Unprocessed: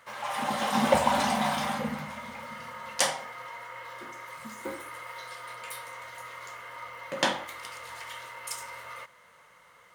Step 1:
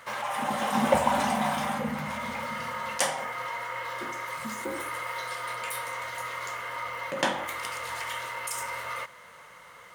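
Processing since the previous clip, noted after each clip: dynamic bell 4.4 kHz, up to -6 dB, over -49 dBFS, Q 1.4; in parallel at -2.5 dB: compressor with a negative ratio -41 dBFS, ratio -1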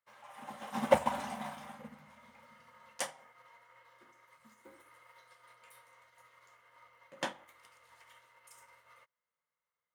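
upward expansion 2.5:1, over -46 dBFS; trim -1 dB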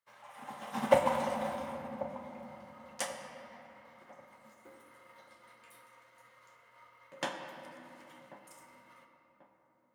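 feedback echo behind a low-pass 1088 ms, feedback 33%, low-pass 1 kHz, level -15 dB; simulated room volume 170 m³, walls hard, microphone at 0.3 m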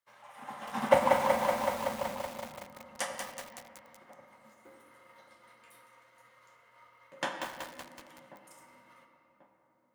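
dynamic bell 1.4 kHz, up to +4 dB, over -51 dBFS, Q 0.86; bit-crushed delay 188 ms, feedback 80%, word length 7-bit, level -4 dB

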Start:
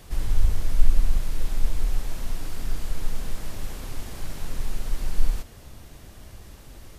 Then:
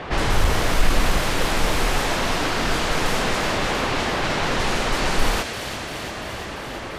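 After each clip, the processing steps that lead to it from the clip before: level-controlled noise filter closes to 2.6 kHz, open at -14.5 dBFS; overdrive pedal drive 32 dB, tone 1.8 kHz, clips at -3 dBFS; feedback echo behind a high-pass 343 ms, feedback 74%, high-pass 2.1 kHz, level -6.5 dB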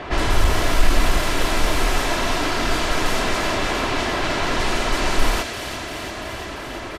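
comb 3 ms, depth 37%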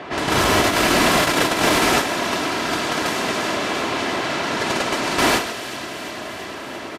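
delay 103 ms -5 dB; gate -16 dBFS, range -7 dB; Chebyshev high-pass 170 Hz, order 2; trim +6.5 dB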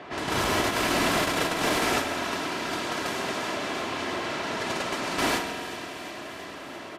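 spring tank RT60 3 s, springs 46 ms, chirp 60 ms, DRR 7.5 dB; trim -8.5 dB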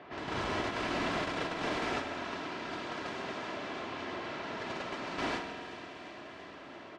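distance through air 130 m; trim -8 dB

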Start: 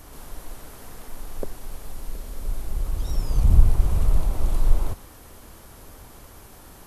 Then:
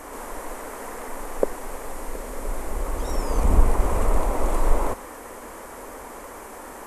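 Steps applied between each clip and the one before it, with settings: graphic EQ 125/250/500/1000/2000/4000/8000 Hz -11/+9/+12/+11/+11/-4/+10 dB; trim -2 dB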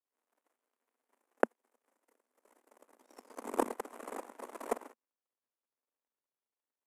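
power-law waveshaper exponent 3; elliptic high-pass 230 Hz, stop band 40 dB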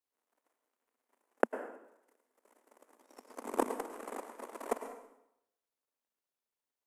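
plate-style reverb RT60 0.81 s, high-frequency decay 0.85×, pre-delay 90 ms, DRR 9.5 dB

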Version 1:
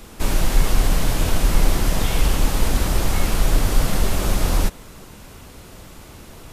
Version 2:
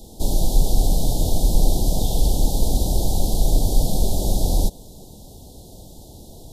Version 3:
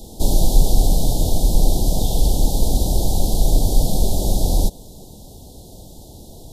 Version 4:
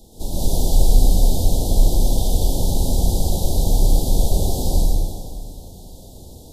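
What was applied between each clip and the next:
elliptic band-stop 790–3700 Hz, stop band 40 dB
gain riding 2 s; trim +2 dB
plate-style reverb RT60 2.3 s, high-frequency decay 0.85×, pre-delay 105 ms, DRR -8 dB; trim -9.5 dB

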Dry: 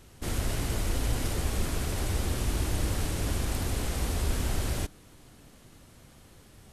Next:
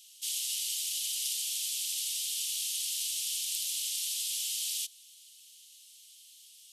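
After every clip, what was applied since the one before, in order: elliptic high-pass 3 kHz, stop band 60 dB; trim +7.5 dB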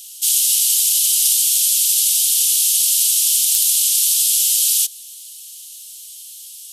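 RIAA curve recording; sine folder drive 4 dB, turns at -2 dBFS; trim -1 dB

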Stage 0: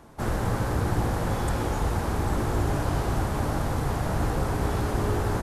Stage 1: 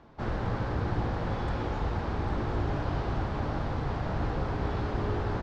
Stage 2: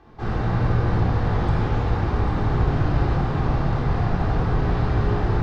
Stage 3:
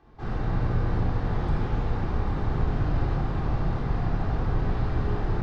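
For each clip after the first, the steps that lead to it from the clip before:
low-pass 4.6 kHz 24 dB/octave; trim -4.5 dB
simulated room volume 1600 m³, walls mixed, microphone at 3.7 m
octave divider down 2 oct, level +1 dB; trim -7 dB

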